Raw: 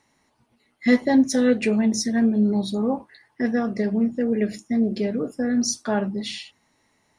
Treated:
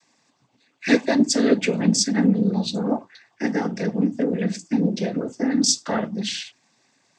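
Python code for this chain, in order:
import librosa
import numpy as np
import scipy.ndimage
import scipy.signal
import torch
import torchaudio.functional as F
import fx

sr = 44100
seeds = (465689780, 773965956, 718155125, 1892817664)

y = fx.high_shelf(x, sr, hz=3200.0, db=9.0)
y = fx.noise_vocoder(y, sr, seeds[0], bands=16)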